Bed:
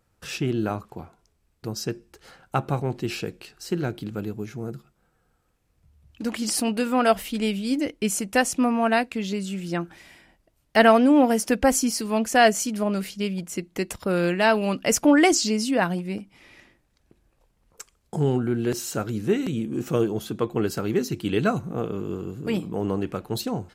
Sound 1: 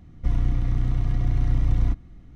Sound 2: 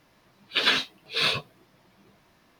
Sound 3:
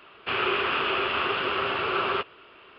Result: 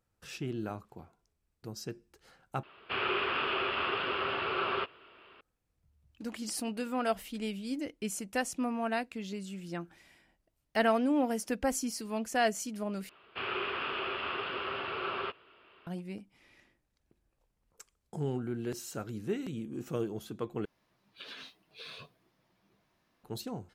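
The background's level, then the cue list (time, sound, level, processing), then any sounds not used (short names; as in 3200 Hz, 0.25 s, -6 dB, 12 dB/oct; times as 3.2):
bed -11.5 dB
2.63 replace with 3 -6 dB
13.09 replace with 3 -9.5 dB
20.65 replace with 2 -13 dB + compressor 16:1, threshold -29 dBFS
not used: 1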